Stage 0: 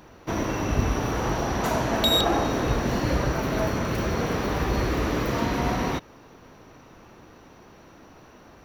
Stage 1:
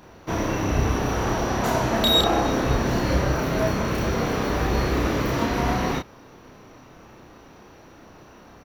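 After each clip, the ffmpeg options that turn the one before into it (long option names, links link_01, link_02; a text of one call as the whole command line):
ffmpeg -i in.wav -filter_complex "[0:a]asplit=2[link_01][link_02];[link_02]adelay=31,volume=-2dB[link_03];[link_01][link_03]amix=inputs=2:normalize=0" out.wav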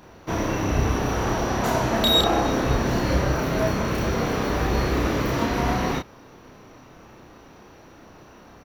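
ffmpeg -i in.wav -af anull out.wav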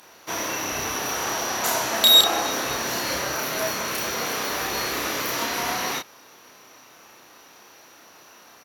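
ffmpeg -i in.wav -af "highpass=frequency=1100:poles=1,equalizer=frequency=12000:width_type=o:width=1.9:gain=12.5,volume=2dB" out.wav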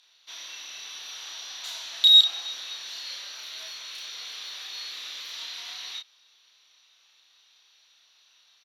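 ffmpeg -i in.wav -af "bandpass=frequency=3700:width_type=q:width=4.4:csg=0" out.wav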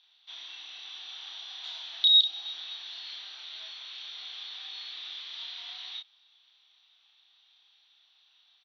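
ffmpeg -i in.wav -filter_complex "[0:a]highpass=frequency=230:width=0.5412,highpass=frequency=230:width=1.3066,equalizer=frequency=320:width_type=q:width=4:gain=3,equalizer=frequency=540:width_type=q:width=4:gain=-10,equalizer=frequency=770:width_type=q:width=4:gain=7,equalizer=frequency=3400:width_type=q:width=4:gain=9,lowpass=frequency=4500:width=0.5412,lowpass=frequency=4500:width=1.3066,acrossover=split=490|3000[link_01][link_02][link_03];[link_02]acompressor=threshold=-35dB:ratio=6[link_04];[link_01][link_04][link_03]amix=inputs=3:normalize=0,volume=-7dB" out.wav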